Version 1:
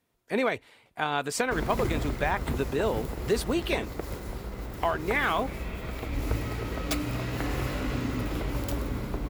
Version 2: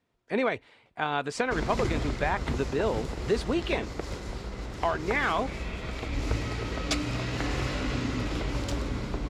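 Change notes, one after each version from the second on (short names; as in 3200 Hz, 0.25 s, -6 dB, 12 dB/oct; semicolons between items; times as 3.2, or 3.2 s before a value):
background: add bell 6500 Hz +10 dB 2.2 oct; master: add air absorption 88 m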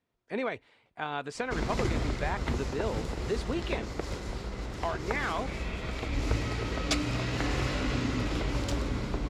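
speech -5.5 dB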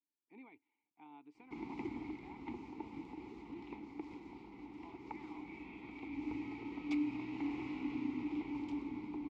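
speech -11.0 dB; master: add vowel filter u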